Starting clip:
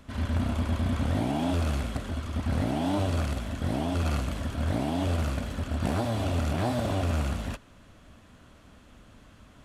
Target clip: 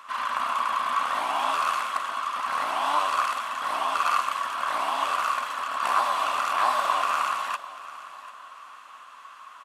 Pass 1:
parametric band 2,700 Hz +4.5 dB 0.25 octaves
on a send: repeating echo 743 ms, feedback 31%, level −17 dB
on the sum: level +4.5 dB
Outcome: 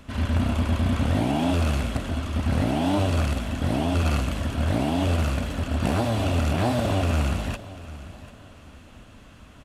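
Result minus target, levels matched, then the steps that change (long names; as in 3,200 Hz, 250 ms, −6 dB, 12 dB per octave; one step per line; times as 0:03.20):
1,000 Hz band −10.5 dB
add first: high-pass with resonance 1,100 Hz, resonance Q 8.5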